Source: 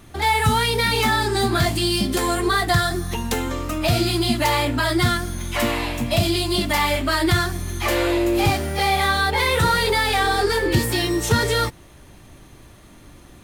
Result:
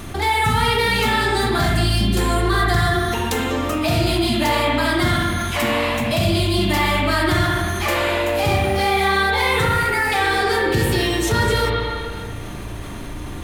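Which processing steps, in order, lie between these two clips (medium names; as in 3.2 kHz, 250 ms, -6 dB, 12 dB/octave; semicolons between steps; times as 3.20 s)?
9.65–10.12 s: static phaser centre 710 Hz, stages 8; reverberation RT60 1.3 s, pre-delay 36 ms, DRR -2 dB; level flattener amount 50%; trim -4.5 dB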